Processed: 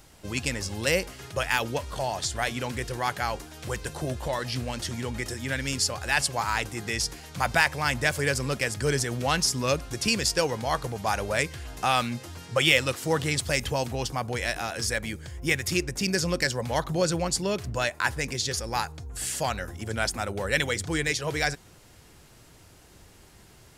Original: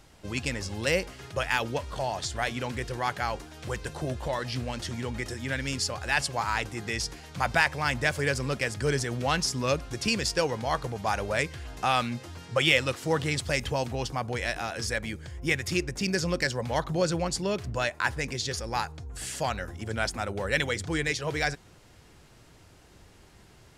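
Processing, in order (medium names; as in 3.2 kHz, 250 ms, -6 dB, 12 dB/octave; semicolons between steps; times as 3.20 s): treble shelf 8.7 kHz +11 dB; trim +1 dB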